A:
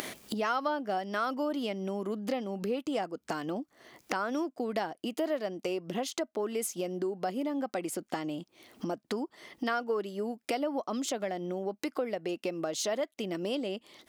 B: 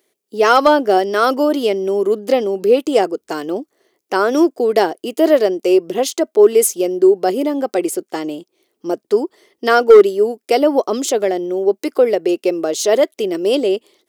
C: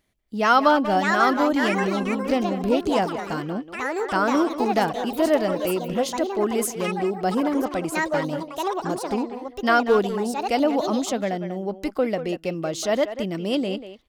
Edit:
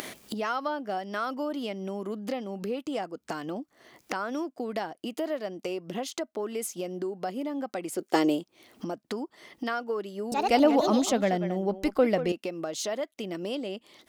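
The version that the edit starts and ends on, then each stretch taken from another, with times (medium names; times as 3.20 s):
A
8.01–8.41 s: from B, crossfade 0.10 s
10.32–12.32 s: from C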